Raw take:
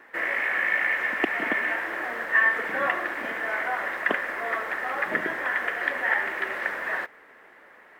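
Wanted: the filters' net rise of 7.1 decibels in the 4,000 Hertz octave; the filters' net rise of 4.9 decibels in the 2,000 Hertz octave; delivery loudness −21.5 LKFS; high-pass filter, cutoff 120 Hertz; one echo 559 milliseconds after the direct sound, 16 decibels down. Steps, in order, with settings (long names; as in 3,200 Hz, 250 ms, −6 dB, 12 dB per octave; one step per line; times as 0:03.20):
high-pass filter 120 Hz
parametric band 2,000 Hz +4 dB
parametric band 4,000 Hz +8.5 dB
single-tap delay 559 ms −16 dB
level −0.5 dB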